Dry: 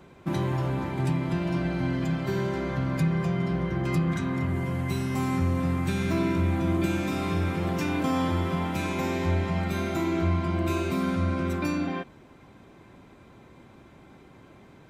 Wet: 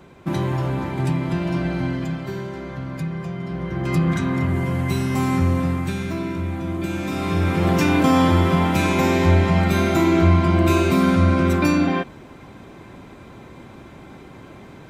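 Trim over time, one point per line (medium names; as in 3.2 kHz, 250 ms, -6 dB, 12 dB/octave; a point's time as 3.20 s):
1.78 s +4.5 dB
2.46 s -2.5 dB
3.42 s -2.5 dB
4.04 s +6.5 dB
5.52 s +6.5 dB
6.18 s -1 dB
6.76 s -1 dB
7.71 s +10 dB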